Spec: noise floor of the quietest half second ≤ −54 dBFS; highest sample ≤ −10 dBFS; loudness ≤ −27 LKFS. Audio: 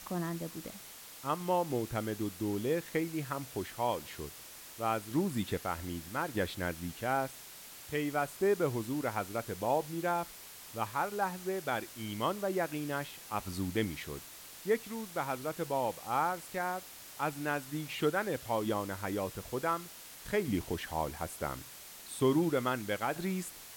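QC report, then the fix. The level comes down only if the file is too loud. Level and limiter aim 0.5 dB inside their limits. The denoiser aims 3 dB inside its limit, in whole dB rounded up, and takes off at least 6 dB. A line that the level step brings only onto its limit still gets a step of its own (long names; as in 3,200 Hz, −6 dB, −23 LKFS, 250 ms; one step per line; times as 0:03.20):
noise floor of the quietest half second −50 dBFS: out of spec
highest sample −18.0 dBFS: in spec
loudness −35.0 LKFS: in spec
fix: broadband denoise 7 dB, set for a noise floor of −50 dBFS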